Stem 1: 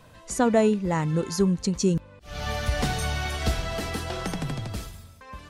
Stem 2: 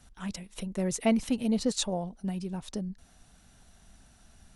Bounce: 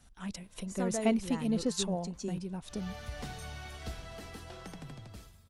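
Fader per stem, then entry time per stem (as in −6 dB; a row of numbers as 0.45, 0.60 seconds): −15.5, −3.5 decibels; 0.40, 0.00 seconds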